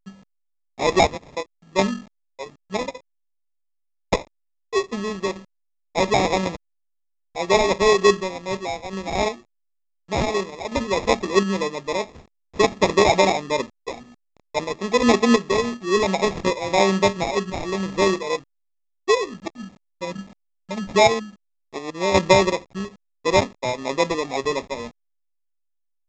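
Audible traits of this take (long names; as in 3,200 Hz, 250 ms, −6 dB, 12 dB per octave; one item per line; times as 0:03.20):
a quantiser's noise floor 8 bits, dither none
sample-and-hold tremolo 2.8 Hz, depth 70%
aliases and images of a low sample rate 1,500 Hz, jitter 0%
A-law companding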